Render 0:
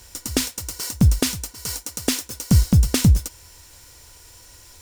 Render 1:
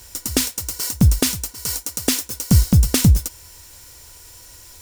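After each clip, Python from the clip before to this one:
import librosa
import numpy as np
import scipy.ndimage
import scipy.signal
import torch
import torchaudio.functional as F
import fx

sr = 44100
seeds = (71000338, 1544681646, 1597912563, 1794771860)

y = fx.high_shelf(x, sr, hz=10000.0, db=7.0)
y = y * librosa.db_to_amplitude(1.5)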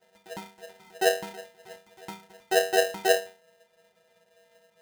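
y = fx.octave_resonator(x, sr, note='F#', decay_s=0.36)
y = y * np.sign(np.sin(2.0 * np.pi * 570.0 * np.arange(len(y)) / sr))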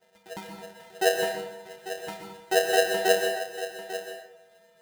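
y = x + 10.0 ** (-12.5 / 20.0) * np.pad(x, (int(845 * sr / 1000.0), 0))[:len(x)]
y = fx.rev_plate(y, sr, seeds[0], rt60_s=0.79, hf_ratio=0.6, predelay_ms=110, drr_db=3.0)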